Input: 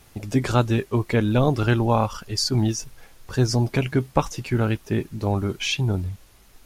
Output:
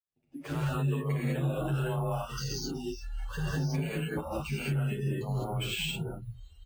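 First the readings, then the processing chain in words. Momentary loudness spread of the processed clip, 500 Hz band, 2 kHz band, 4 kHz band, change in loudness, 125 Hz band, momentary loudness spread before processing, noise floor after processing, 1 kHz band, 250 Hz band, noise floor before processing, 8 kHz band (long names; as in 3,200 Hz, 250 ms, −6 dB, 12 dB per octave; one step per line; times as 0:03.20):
9 LU, −11.0 dB, −8.0 dB, −9.0 dB, −9.5 dB, −8.0 dB, 7 LU, −63 dBFS, −12.0 dB, −11.0 dB, −53 dBFS, −10.5 dB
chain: fade in at the beginning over 1.23 s
downward compressor 6 to 1, threshold −32 dBFS, peak gain reduction 17.5 dB
reverb whose tail is shaped and stops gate 230 ms rising, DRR −7 dB
frequency shifter +28 Hz
noise reduction from a noise print of the clip's start 23 dB
parametric band 2,900 Hz +5.5 dB 0.26 octaves
bad sample-rate conversion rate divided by 4×, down filtered, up hold
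high-shelf EQ 6,500 Hz −7 dB
brickwall limiter −20.5 dBFS, peak gain reduction 8 dB
barber-pole flanger 8.2 ms −0.33 Hz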